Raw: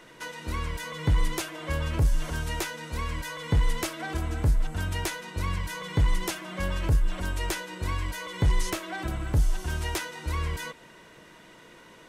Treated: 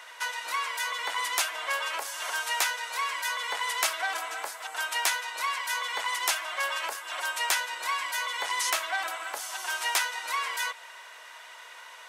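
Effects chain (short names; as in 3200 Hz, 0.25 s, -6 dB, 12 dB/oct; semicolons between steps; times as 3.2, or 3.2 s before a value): HPF 740 Hz 24 dB/oct; gain +7 dB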